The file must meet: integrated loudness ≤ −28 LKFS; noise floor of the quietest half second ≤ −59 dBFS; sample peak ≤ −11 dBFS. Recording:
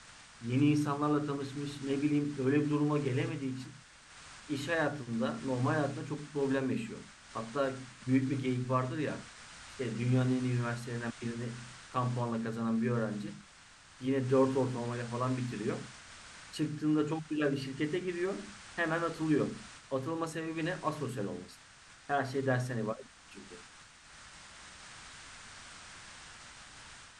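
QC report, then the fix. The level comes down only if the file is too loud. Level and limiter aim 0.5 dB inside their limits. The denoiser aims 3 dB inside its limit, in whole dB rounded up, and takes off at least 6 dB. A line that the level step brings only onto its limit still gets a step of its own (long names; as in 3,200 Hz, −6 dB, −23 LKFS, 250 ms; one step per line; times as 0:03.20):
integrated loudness −34.0 LKFS: in spec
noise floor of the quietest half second −57 dBFS: out of spec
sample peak −17.0 dBFS: in spec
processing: broadband denoise 6 dB, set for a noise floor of −57 dBFS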